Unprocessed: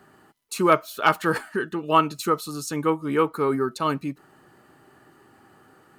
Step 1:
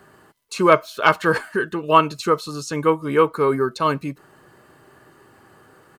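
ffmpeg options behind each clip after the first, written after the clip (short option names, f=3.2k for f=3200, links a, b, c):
-filter_complex "[0:a]acrossover=split=7300[a][b];[b]acompressor=threshold=-53dB:ratio=4:attack=1:release=60[c];[a][c]amix=inputs=2:normalize=0,aecho=1:1:1.9:0.33,volume=4dB"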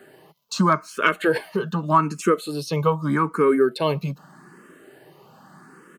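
-filter_complex "[0:a]lowshelf=f=120:t=q:w=3:g=-11,acompressor=threshold=-16dB:ratio=4,asplit=2[a][b];[b]afreqshift=0.82[c];[a][c]amix=inputs=2:normalize=1,volume=4dB"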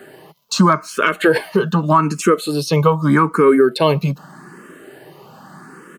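-af "alimiter=limit=-11.5dB:level=0:latency=1:release=121,volume=8.5dB"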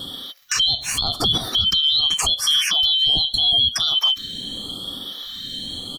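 -af "afftfilt=real='real(if(lt(b,272),68*(eq(floor(b/68),0)*1+eq(floor(b/68),1)*3+eq(floor(b/68),2)*0+eq(floor(b/68),3)*2)+mod(b,68),b),0)':imag='imag(if(lt(b,272),68*(eq(floor(b/68),0)*1+eq(floor(b/68),1)*3+eq(floor(b/68),2)*0+eq(floor(b/68),3)*2)+mod(b,68),b),0)':win_size=2048:overlap=0.75,acompressor=threshold=-17dB:ratio=6,alimiter=limit=-19.5dB:level=0:latency=1:release=88,volume=9dB"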